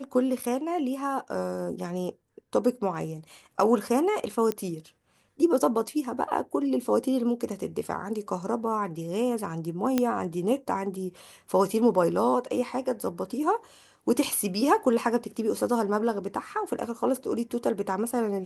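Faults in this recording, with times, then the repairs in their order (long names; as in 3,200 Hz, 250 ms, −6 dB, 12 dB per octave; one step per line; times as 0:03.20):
0:04.52: click −14 dBFS
0:09.98: click −10 dBFS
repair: click removal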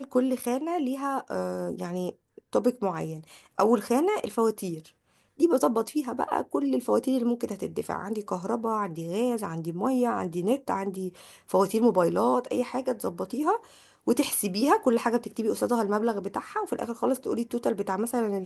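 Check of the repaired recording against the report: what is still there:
none of them is left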